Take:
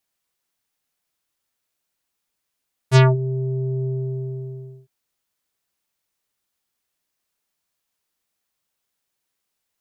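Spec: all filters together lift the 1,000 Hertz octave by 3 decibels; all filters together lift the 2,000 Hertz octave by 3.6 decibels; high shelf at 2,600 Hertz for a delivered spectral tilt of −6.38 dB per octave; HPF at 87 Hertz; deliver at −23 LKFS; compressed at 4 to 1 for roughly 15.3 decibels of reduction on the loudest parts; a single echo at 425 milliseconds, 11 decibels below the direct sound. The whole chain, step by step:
high-pass filter 87 Hz
parametric band 1,000 Hz +3 dB
parametric band 2,000 Hz +7 dB
high-shelf EQ 2,600 Hz −8 dB
downward compressor 4 to 1, threshold −26 dBFS
single-tap delay 425 ms −11 dB
level +9 dB

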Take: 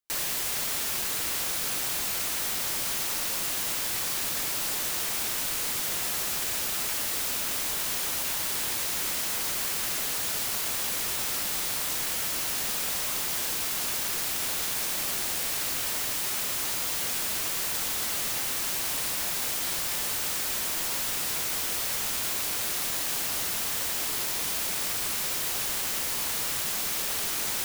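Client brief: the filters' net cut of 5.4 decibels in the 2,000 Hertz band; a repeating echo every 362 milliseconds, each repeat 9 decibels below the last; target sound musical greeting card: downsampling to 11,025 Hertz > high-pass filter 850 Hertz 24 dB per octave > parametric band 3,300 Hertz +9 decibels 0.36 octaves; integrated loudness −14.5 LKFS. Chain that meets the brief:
parametric band 2,000 Hz −8.5 dB
repeating echo 362 ms, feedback 35%, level −9 dB
downsampling to 11,025 Hz
high-pass filter 850 Hz 24 dB per octave
parametric band 3,300 Hz +9 dB 0.36 octaves
level +18.5 dB

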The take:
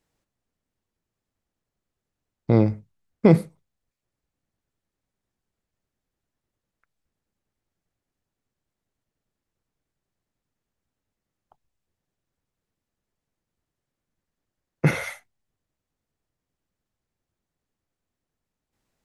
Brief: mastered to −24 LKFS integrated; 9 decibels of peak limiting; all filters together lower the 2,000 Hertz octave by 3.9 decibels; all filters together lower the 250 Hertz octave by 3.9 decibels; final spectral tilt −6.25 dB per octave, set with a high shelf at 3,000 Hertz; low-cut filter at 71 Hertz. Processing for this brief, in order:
high-pass filter 71 Hz
parametric band 250 Hz −6 dB
parametric band 2,000 Hz −6.5 dB
high-shelf EQ 3,000 Hz +6 dB
level +5 dB
brickwall limiter −9 dBFS

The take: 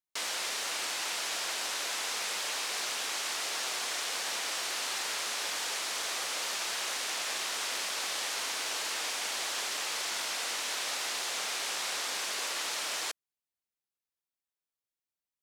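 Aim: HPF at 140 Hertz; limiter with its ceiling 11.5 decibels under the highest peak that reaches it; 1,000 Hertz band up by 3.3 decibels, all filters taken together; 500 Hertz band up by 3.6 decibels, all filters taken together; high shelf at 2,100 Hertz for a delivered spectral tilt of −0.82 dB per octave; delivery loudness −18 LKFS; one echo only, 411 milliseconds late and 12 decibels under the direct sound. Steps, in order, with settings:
high-pass filter 140 Hz
parametric band 500 Hz +3.5 dB
parametric band 1,000 Hz +5 dB
high-shelf EQ 2,100 Hz −7.5 dB
brickwall limiter −35.5 dBFS
single-tap delay 411 ms −12 dB
level +24.5 dB

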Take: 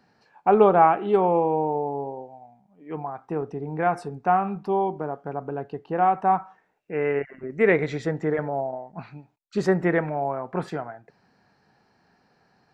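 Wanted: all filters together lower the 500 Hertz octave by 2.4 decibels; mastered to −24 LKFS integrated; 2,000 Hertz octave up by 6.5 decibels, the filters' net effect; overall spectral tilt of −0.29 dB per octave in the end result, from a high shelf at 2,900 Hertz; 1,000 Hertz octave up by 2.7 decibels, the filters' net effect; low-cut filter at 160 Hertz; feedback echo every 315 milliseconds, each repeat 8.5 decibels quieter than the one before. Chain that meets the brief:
high-pass filter 160 Hz
parametric band 500 Hz −4.5 dB
parametric band 1,000 Hz +5 dB
parametric band 2,000 Hz +7.5 dB
high-shelf EQ 2,900 Hz −3.5 dB
repeating echo 315 ms, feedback 38%, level −8.5 dB
level −1 dB

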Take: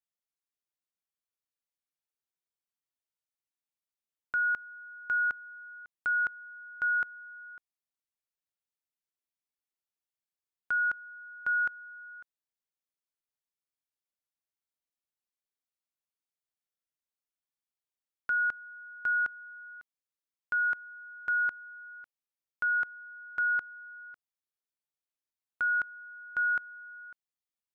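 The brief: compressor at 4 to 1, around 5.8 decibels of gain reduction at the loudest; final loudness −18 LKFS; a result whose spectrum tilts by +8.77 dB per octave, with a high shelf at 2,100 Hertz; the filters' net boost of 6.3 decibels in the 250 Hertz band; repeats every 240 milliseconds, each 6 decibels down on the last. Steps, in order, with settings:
parametric band 250 Hz +8 dB
high-shelf EQ 2,100 Hz +8 dB
downward compressor 4 to 1, threshold −30 dBFS
repeating echo 240 ms, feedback 50%, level −6 dB
level +14 dB

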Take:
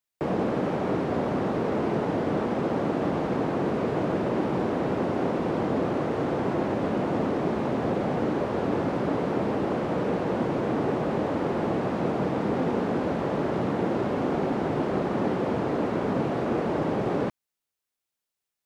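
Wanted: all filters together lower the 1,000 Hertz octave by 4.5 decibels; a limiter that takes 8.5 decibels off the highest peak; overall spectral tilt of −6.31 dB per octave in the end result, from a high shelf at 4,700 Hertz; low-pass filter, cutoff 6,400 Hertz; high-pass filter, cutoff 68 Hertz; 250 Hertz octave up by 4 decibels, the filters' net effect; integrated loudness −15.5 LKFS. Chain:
high-pass filter 68 Hz
low-pass filter 6,400 Hz
parametric band 250 Hz +5.5 dB
parametric band 1,000 Hz −7 dB
high-shelf EQ 4,700 Hz +8 dB
level +12.5 dB
brickwall limiter −7 dBFS

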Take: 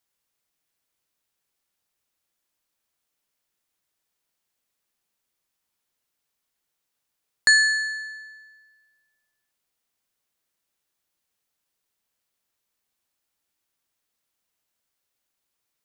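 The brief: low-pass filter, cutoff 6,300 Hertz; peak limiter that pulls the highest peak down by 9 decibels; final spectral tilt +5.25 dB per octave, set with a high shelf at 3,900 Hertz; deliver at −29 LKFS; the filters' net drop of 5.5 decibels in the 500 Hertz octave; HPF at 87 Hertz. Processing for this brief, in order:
high-pass filter 87 Hz
low-pass filter 6,300 Hz
parametric band 500 Hz −7.5 dB
high-shelf EQ 3,900 Hz +5.5 dB
level −6 dB
brickwall limiter −20.5 dBFS

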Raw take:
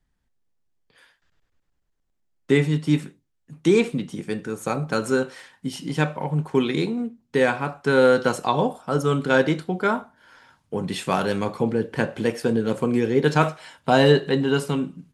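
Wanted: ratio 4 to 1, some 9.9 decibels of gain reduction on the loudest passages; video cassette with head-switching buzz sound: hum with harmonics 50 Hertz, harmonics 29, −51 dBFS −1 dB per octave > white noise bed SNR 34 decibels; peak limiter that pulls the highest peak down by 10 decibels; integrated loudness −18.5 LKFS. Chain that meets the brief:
downward compressor 4 to 1, threshold −24 dBFS
brickwall limiter −19 dBFS
hum with harmonics 50 Hz, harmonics 29, −51 dBFS −1 dB per octave
white noise bed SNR 34 dB
level +12.5 dB

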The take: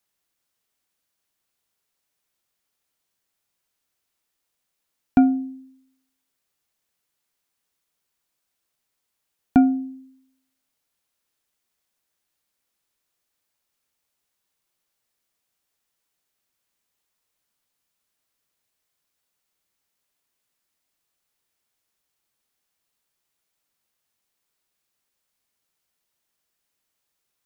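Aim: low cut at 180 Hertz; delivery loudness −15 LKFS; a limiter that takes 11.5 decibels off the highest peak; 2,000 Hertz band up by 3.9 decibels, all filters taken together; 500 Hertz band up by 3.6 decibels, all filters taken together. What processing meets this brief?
high-pass filter 180 Hz
parametric band 500 Hz +6.5 dB
parametric band 2,000 Hz +6 dB
level +12 dB
brickwall limiter −3.5 dBFS

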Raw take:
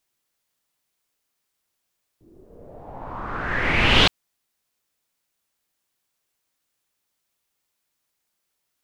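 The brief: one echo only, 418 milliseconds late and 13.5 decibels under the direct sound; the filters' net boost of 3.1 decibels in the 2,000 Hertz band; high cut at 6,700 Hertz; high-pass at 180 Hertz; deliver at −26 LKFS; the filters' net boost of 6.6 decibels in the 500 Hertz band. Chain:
high-pass filter 180 Hz
low-pass filter 6,700 Hz
parametric band 500 Hz +8 dB
parametric band 2,000 Hz +3.5 dB
single-tap delay 418 ms −13.5 dB
level −7.5 dB

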